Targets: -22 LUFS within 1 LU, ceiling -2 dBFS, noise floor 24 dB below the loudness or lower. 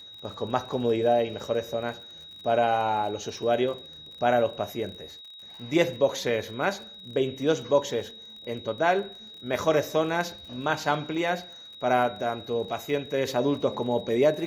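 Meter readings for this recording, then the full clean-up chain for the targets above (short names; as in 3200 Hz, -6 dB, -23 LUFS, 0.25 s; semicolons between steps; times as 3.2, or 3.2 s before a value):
ticks 38/s; steady tone 3800 Hz; tone level -43 dBFS; loudness -27.0 LUFS; peak -8.5 dBFS; loudness target -22.0 LUFS
-> de-click; notch 3800 Hz, Q 30; gain +5 dB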